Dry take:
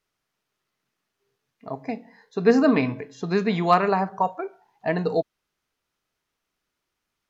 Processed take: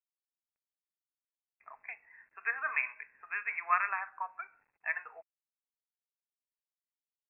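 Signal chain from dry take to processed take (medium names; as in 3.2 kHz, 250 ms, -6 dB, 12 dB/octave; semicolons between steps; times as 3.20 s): high-pass 1.4 kHz 24 dB/octave; companded quantiser 6-bit; brick-wall FIR low-pass 2.7 kHz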